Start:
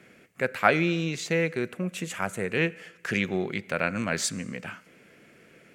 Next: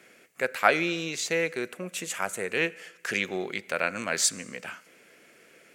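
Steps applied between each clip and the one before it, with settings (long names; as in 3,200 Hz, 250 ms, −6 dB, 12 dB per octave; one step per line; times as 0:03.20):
bass and treble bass −13 dB, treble +6 dB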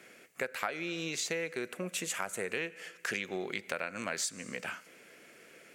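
downward compressor 12 to 1, threshold −31 dBFS, peak gain reduction 17.5 dB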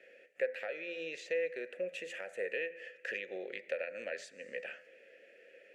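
formant filter e
hum removal 84.81 Hz, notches 28
level +7 dB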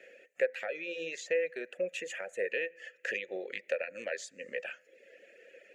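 reverb reduction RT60 0.81 s
parametric band 6,800 Hz +9 dB 0.22 octaves
level +4.5 dB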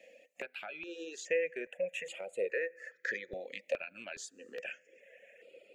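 step-sequenced phaser 2.4 Hz 390–6,000 Hz
level +1 dB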